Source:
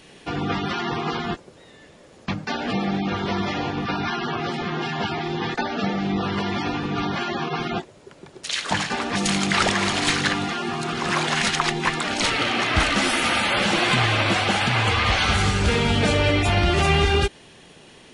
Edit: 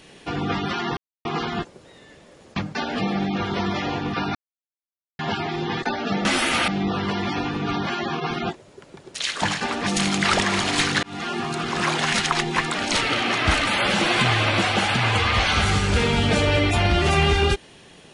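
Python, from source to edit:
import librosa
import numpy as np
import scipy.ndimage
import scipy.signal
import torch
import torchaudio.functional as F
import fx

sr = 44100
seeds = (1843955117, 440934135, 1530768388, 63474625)

y = fx.edit(x, sr, fx.insert_silence(at_s=0.97, length_s=0.28),
    fx.silence(start_s=4.07, length_s=0.84),
    fx.fade_in_span(start_s=10.32, length_s=0.26),
    fx.move(start_s=12.96, length_s=0.43, to_s=5.97), tone=tone)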